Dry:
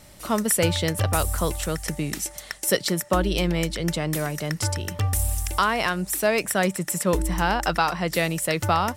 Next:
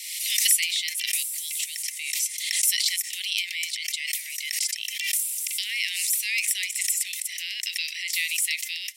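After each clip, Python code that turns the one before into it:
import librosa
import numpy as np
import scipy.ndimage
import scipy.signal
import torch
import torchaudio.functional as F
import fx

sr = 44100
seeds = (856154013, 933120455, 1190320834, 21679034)

y = scipy.signal.sosfilt(scipy.signal.butter(16, 2000.0, 'highpass', fs=sr, output='sos'), x)
y = fx.pre_swell(y, sr, db_per_s=41.0)
y = y * librosa.db_to_amplitude(2.5)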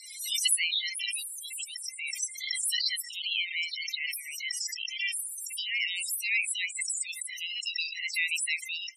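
y = fx.spec_topn(x, sr, count=16)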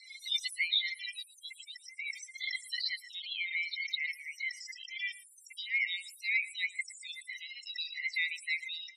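y = fx.double_bandpass(x, sr, hz=2800.0, octaves=0.73)
y = y + 10.0 ** (-19.5 / 20.0) * np.pad(y, (int(114 * sr / 1000.0), 0))[:len(y)]
y = y * librosa.db_to_amplitude(2.0)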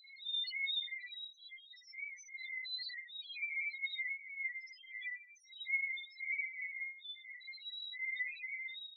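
y = fx.phase_scramble(x, sr, seeds[0], window_ms=200)
y = fx.room_shoebox(y, sr, seeds[1], volume_m3=270.0, walls='mixed', distance_m=0.49)
y = fx.spec_topn(y, sr, count=2)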